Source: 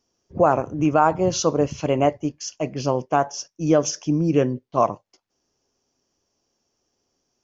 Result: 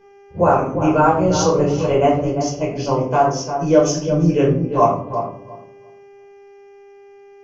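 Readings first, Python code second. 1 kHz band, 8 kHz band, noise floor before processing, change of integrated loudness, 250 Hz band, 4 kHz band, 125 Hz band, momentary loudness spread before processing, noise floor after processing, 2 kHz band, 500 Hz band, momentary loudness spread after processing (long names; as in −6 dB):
+4.5 dB, can't be measured, −76 dBFS, +4.5 dB, +4.0 dB, +2.5 dB, +6.0 dB, 10 LU, −45 dBFS, +4.0 dB, +5.0 dB, 8 LU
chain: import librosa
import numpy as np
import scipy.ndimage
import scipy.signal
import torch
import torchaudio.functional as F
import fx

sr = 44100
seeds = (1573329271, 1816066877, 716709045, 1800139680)

p1 = fx.dmg_buzz(x, sr, base_hz=400.0, harmonics=8, level_db=-51.0, tilt_db=-9, odd_only=False)
p2 = p1 + fx.echo_filtered(p1, sr, ms=347, feedback_pct=20, hz=1200.0, wet_db=-7, dry=0)
p3 = fx.room_shoebox(p2, sr, seeds[0], volume_m3=520.0, walls='furnished', distance_m=4.9)
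y = F.gain(torch.from_numpy(p3), -4.0).numpy()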